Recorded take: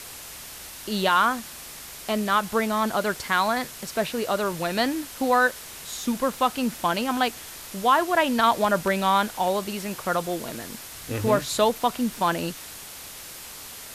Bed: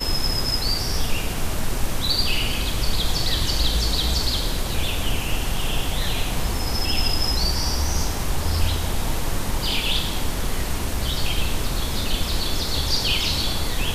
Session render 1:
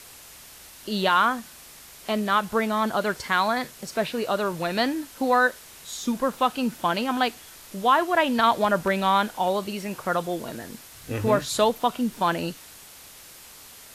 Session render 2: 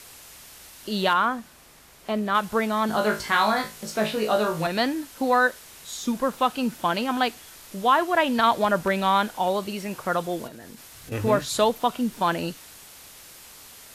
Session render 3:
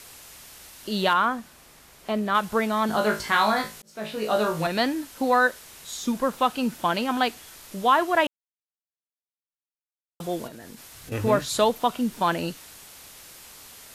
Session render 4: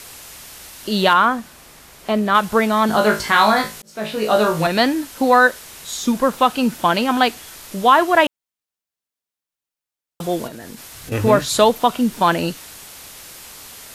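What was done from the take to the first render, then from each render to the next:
noise print and reduce 6 dB
1.13–2.35 high shelf 2200 Hz -8 dB; 2.87–4.67 flutter echo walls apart 3.2 m, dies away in 0.27 s; 10.47–11.12 compressor, threshold -38 dBFS
3.82–4.41 fade in; 8.27–10.2 mute
gain +7.5 dB; limiter -2 dBFS, peak gain reduction 1.5 dB

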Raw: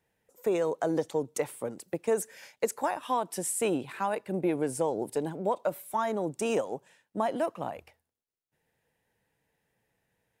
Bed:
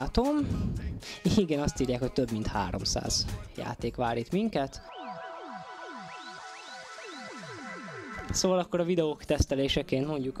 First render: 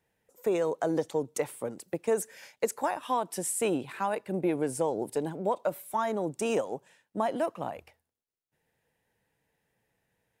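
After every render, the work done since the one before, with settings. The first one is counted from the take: nothing audible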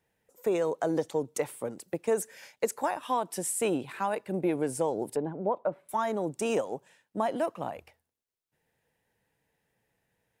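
5.16–5.89 LPF 1400 Hz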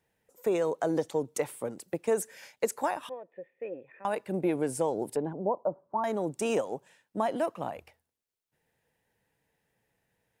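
3.09–4.05 vocal tract filter e; 5.33–6.04 steep low-pass 1100 Hz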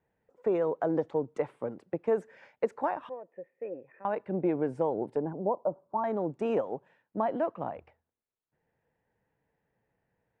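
LPF 1600 Hz 12 dB/oct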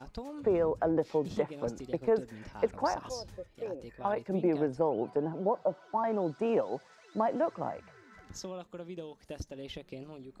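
add bed -15.5 dB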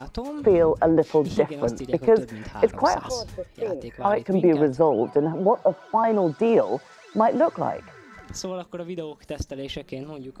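gain +10 dB

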